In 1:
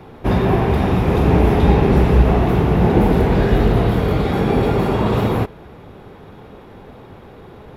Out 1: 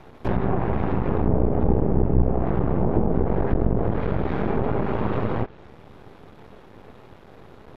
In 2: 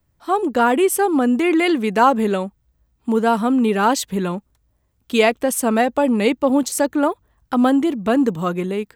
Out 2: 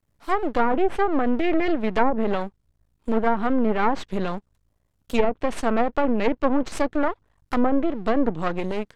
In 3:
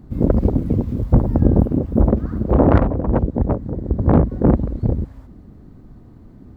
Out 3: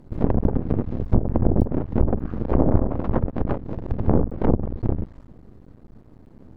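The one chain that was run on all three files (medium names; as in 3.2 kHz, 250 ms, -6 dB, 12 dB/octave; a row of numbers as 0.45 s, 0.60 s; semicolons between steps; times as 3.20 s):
half-wave rectifier; low-pass that closes with the level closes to 700 Hz, closed at -11.5 dBFS; normalise loudness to -24 LUFS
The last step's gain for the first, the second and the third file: -3.0 dB, 0.0 dB, -1.0 dB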